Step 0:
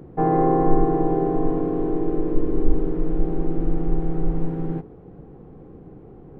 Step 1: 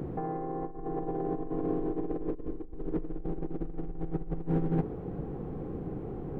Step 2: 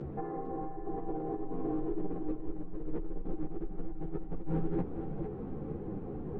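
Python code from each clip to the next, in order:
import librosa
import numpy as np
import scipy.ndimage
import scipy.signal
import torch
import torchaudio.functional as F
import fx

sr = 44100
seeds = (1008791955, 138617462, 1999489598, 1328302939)

y1 = fx.over_compress(x, sr, threshold_db=-29.0, ratio=-1.0)
y1 = y1 * 10.0 ** (-4.0 / 20.0)
y2 = fx.air_absorb(y1, sr, metres=100.0)
y2 = fx.echo_feedback(y2, sr, ms=454, feedback_pct=46, wet_db=-8.0)
y2 = fx.ensemble(y2, sr)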